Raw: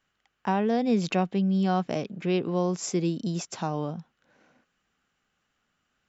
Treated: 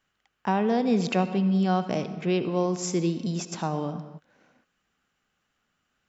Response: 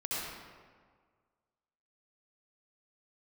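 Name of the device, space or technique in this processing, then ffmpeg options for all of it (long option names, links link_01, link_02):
keyed gated reverb: -filter_complex "[0:a]asplit=3[link_01][link_02][link_03];[1:a]atrim=start_sample=2205[link_04];[link_02][link_04]afir=irnorm=-1:irlink=0[link_05];[link_03]apad=whole_len=268167[link_06];[link_05][link_06]sidechaingate=range=-33dB:threshold=-58dB:ratio=16:detection=peak,volume=-14.5dB[link_07];[link_01][link_07]amix=inputs=2:normalize=0"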